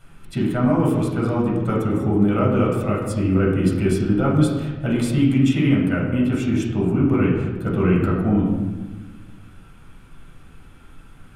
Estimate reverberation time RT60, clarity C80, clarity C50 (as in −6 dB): 1.2 s, 5.0 dB, 2.5 dB